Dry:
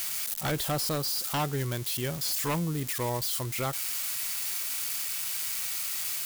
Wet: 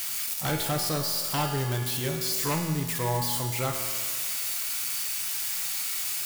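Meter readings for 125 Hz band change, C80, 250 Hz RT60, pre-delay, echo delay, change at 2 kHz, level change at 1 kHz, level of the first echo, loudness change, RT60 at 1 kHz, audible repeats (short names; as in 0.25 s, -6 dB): +3.0 dB, 6.0 dB, 1.8 s, 3 ms, none, +2.5 dB, +2.5 dB, none, +2.0 dB, 1.8 s, none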